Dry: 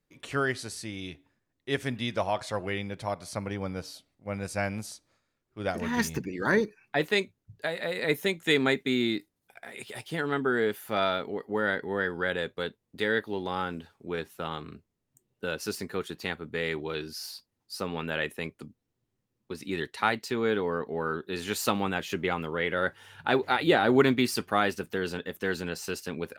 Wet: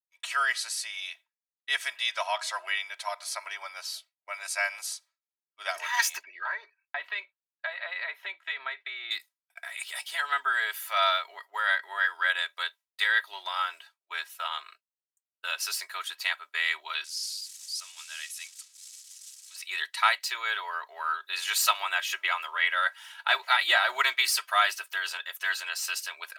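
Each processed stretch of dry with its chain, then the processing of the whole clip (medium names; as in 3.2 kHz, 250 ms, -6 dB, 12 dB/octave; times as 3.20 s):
6.23–9.11 s: compression 8:1, threshold -26 dBFS + distance through air 400 m
17.04–19.56 s: zero-crossing glitches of -29.5 dBFS + band-pass filter 7.2 kHz, Q 1.3 + distance through air 55 m
whole clip: Bessel high-pass 1.3 kHz, order 6; expander -52 dBFS; comb 3.1 ms, depth 80%; trim +5.5 dB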